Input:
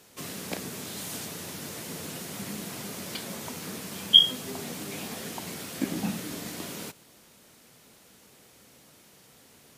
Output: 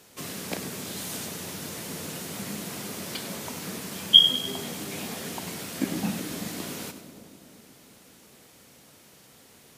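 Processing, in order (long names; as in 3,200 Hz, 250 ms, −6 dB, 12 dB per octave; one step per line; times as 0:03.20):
echo with a time of its own for lows and highs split 750 Hz, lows 374 ms, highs 98 ms, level −11.5 dB
level +1.5 dB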